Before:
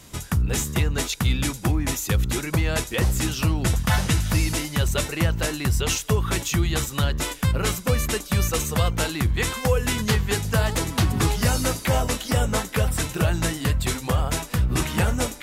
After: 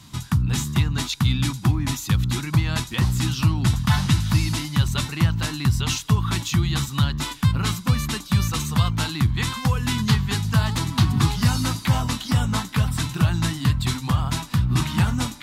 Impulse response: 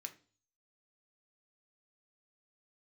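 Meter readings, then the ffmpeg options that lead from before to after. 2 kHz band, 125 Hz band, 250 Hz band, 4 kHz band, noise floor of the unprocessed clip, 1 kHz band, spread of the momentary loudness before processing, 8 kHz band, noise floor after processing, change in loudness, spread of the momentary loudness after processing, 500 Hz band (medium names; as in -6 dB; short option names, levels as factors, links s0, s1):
-2.0 dB, +3.5 dB, +2.5 dB, +1.5 dB, -38 dBFS, 0.0 dB, 2 LU, -3.5 dB, -39 dBFS, +1.0 dB, 3 LU, -10.5 dB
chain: -af "equalizer=f=125:t=o:w=1:g=12,equalizer=f=250:t=o:w=1:g=8,equalizer=f=500:t=o:w=1:g=-12,equalizer=f=1000:t=o:w=1:g=10,equalizer=f=4000:t=o:w=1:g=9,volume=0.501"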